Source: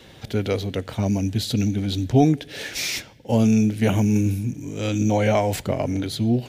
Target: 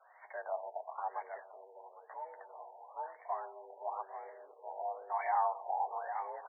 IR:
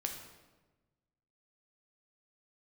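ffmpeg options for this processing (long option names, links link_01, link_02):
-filter_complex "[0:a]aecho=1:1:808|1616|2424:0.251|0.0527|0.0111,asplit=2[link_01][link_02];[1:a]atrim=start_sample=2205,adelay=93[link_03];[link_02][link_03]afir=irnorm=-1:irlink=0,volume=-18dB[link_04];[link_01][link_04]amix=inputs=2:normalize=0,dynaudnorm=framelen=140:gausssize=5:maxgain=5dB,alimiter=limit=-13dB:level=0:latency=1:release=13,asettb=1/sr,asplit=3[link_05][link_06][link_07];[link_05]atrim=end=1.424[link_08];[link_06]atrim=start=1.42:end=2.75,asetpts=PTS-STARTPTS,afade=type=in:duration=0.004:curve=qsin,afade=type=out:start_time=1.326:duration=0.004:curve=qsin,acompressor=threshold=-22dB:ratio=6[link_09];[link_07]atrim=start=2.746[link_10];[link_08][link_09]acrossfade=duration=0.004:curve1=hsin:curve2=qsin[link_11];[link_11][link_10]acrossfade=duration=0.004:curve1=qsin:curve2=hsin,highpass=frequency=560:width_type=q:width=0.5412,highpass=frequency=560:width_type=q:width=1.307,lowpass=frequency=3500:width_type=q:width=0.5176,lowpass=frequency=3500:width_type=q:width=0.7071,lowpass=frequency=3500:width_type=q:width=1.932,afreqshift=180,flanger=delay=9.1:depth=1.7:regen=-34:speed=0.97:shape=triangular,afftfilt=real='re*lt(b*sr/1024,960*pow(2300/960,0.5+0.5*sin(2*PI*1*pts/sr)))':imag='im*lt(b*sr/1024,960*pow(2300/960,0.5+0.5*sin(2*PI*1*pts/sr)))':win_size=1024:overlap=0.75,volume=-4dB"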